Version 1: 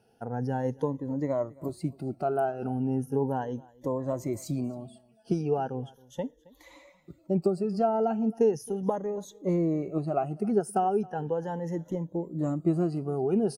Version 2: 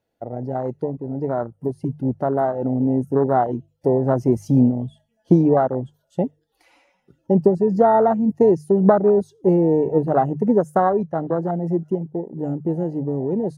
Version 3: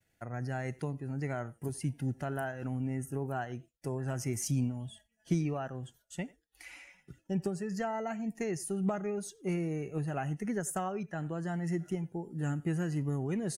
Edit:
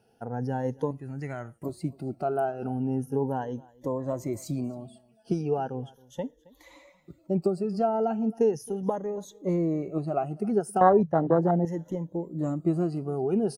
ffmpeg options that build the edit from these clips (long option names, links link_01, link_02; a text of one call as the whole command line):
ffmpeg -i take0.wav -i take1.wav -i take2.wav -filter_complex "[0:a]asplit=3[link_01][link_02][link_03];[link_01]atrim=end=0.912[link_04];[2:a]atrim=start=0.908:end=1.632[link_05];[link_02]atrim=start=1.628:end=10.812[link_06];[1:a]atrim=start=10.808:end=11.652[link_07];[link_03]atrim=start=11.648[link_08];[link_04][link_05]acrossfade=duration=0.004:curve1=hsin:curve2=hsin[link_09];[link_09][link_06]acrossfade=duration=0.004:curve1=hsin:curve2=hsin[link_10];[link_10][link_07]acrossfade=duration=0.004:curve1=hsin:curve2=hsin[link_11];[link_11][link_08]acrossfade=duration=0.004:curve1=hsin:curve2=hsin" out.wav